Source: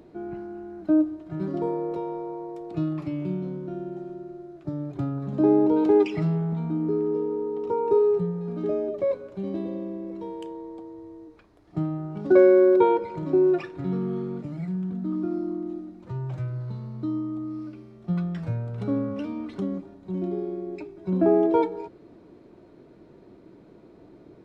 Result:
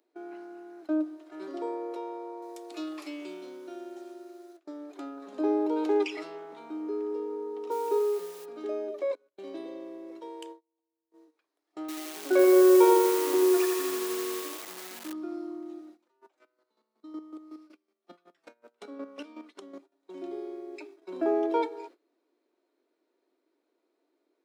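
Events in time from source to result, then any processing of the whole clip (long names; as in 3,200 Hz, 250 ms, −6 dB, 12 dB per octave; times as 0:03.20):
0:02.42–0:04.57: high-shelf EQ 3,300 Hz +11.5 dB
0:07.70–0:08.44: background noise pink −53 dBFS
0:09.15–0:11.12: noise gate with hold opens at −28 dBFS, closes at −30 dBFS
0:11.80–0:15.13: feedback echo at a low word length 84 ms, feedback 80%, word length 6 bits, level −6 dB
0:16.03–0:19.96: square-wave tremolo 5.4 Hz, depth 65%, duty 25%
whole clip: Butterworth high-pass 260 Hz 48 dB per octave; noise gate −43 dBFS, range −18 dB; spectral tilt +3 dB per octave; level −3 dB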